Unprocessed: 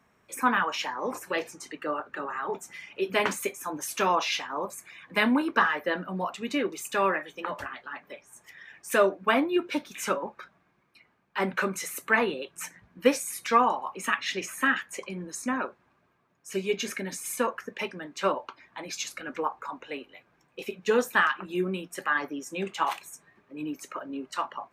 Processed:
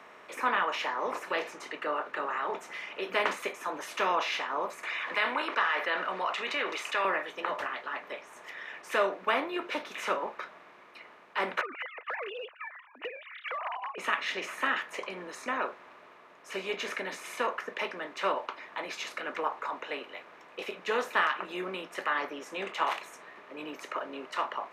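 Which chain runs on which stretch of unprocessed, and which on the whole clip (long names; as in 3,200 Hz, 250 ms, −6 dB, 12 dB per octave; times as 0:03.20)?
0:04.83–0:07.05: resonant band-pass 2,400 Hz, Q 0.67 + envelope flattener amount 50%
0:11.61–0:13.98: three sine waves on the formant tracks + spectral tilt +2.5 dB per octave + downward compressor, threshold −34 dBFS
whole clip: compressor on every frequency bin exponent 0.6; three-way crossover with the lows and the highs turned down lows −12 dB, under 440 Hz, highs −13 dB, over 4,600 Hz; notch filter 1,600 Hz, Q 16; level −5.5 dB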